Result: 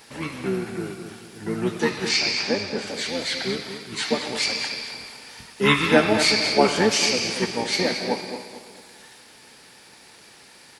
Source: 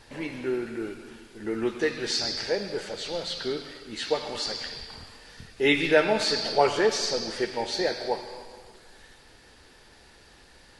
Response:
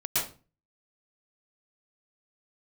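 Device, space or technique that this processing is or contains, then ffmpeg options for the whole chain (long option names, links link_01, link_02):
octave pedal: -filter_complex "[0:a]asplit=3[link_01][link_02][link_03];[link_01]afade=type=out:start_time=2.08:duration=0.02[link_04];[link_02]lowpass=6200,afade=type=in:start_time=2.08:duration=0.02,afade=type=out:start_time=2.86:duration=0.02[link_05];[link_03]afade=type=in:start_time=2.86:duration=0.02[link_06];[link_04][link_05][link_06]amix=inputs=3:normalize=0,highpass=180,aemphasis=mode=production:type=50kf,aecho=1:1:223|446|669|892:0.282|0.107|0.0407|0.0155,asplit=2[link_07][link_08];[link_08]asetrate=22050,aresample=44100,atempo=2,volume=-3dB[link_09];[link_07][link_09]amix=inputs=2:normalize=0,volume=1dB"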